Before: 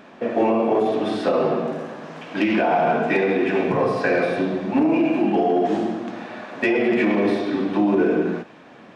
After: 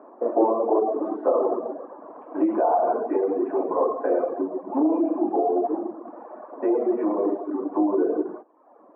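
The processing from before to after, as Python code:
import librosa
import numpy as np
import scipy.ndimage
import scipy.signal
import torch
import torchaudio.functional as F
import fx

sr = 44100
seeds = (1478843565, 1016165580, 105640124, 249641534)

y = scipy.signal.sosfilt(scipy.signal.cheby1(3, 1.0, [300.0, 1100.0], 'bandpass', fs=sr, output='sos'), x)
y = fx.dereverb_blind(y, sr, rt60_s=0.85)
y = fx.rider(y, sr, range_db=10, speed_s=2.0)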